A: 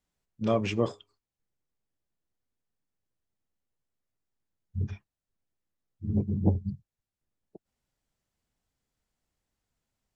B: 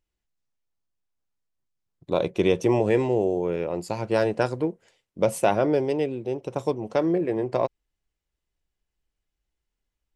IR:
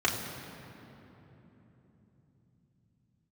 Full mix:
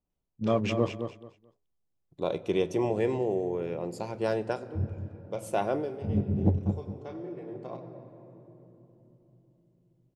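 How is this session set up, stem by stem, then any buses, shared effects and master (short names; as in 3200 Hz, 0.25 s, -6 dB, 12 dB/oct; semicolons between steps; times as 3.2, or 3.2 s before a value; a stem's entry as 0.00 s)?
0.0 dB, 0.00 s, no send, echo send -8 dB, Wiener smoothing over 25 samples
-7.5 dB, 0.10 s, send -22 dB, no echo send, auto duck -19 dB, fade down 0.25 s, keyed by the first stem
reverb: on, RT60 3.6 s, pre-delay 3 ms
echo: feedback echo 0.217 s, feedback 21%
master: dry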